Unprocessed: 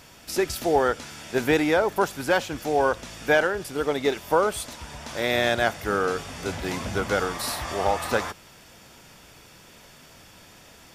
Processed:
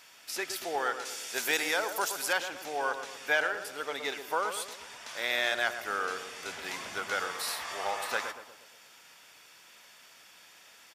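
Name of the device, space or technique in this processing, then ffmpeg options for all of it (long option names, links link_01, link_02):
filter by subtraction: -filter_complex "[0:a]asettb=1/sr,asplit=3[link_01][link_02][link_03];[link_01]atrim=end=1.054[link_04];[link_02]atrim=start=1.05:end=2.33,asetpts=PTS-STARTPTS,afade=type=in:duration=0.004:curve=qsin,afade=type=out:start_time=1.276:duration=0.004:curve=qsin,bass=frequency=250:gain=-3,treble=frequency=4000:gain=11[link_05];[link_03]atrim=start=2.326[link_06];[link_04][link_05]acrossfade=duration=0.004:curve1=hsin:curve2=qsin[link_07];[link_07][link_06]acrossfade=duration=0.004:curve1=qsin:curve2=hsin,asplit=2[link_08][link_09];[link_09]lowpass=1900,volume=-1[link_10];[link_08][link_10]amix=inputs=2:normalize=0,asplit=2[link_11][link_12];[link_12]adelay=119,lowpass=frequency=1100:poles=1,volume=-7dB,asplit=2[link_13][link_14];[link_14]adelay=119,lowpass=frequency=1100:poles=1,volume=0.54,asplit=2[link_15][link_16];[link_16]adelay=119,lowpass=frequency=1100:poles=1,volume=0.54,asplit=2[link_17][link_18];[link_18]adelay=119,lowpass=frequency=1100:poles=1,volume=0.54,asplit=2[link_19][link_20];[link_20]adelay=119,lowpass=frequency=1100:poles=1,volume=0.54,asplit=2[link_21][link_22];[link_22]adelay=119,lowpass=frequency=1100:poles=1,volume=0.54,asplit=2[link_23][link_24];[link_24]adelay=119,lowpass=frequency=1100:poles=1,volume=0.54[link_25];[link_11][link_13][link_15][link_17][link_19][link_21][link_23][link_25]amix=inputs=8:normalize=0,volume=-5dB"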